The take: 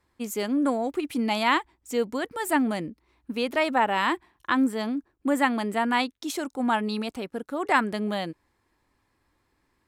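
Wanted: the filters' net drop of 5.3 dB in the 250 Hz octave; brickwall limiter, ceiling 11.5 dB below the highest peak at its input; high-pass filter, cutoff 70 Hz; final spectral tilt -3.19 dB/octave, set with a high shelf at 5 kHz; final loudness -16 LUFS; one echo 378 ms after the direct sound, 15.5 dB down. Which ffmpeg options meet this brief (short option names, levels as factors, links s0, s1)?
-af "highpass=70,equalizer=f=250:t=o:g=-6,highshelf=f=5000:g=3,alimiter=limit=0.119:level=0:latency=1,aecho=1:1:378:0.168,volume=5.62"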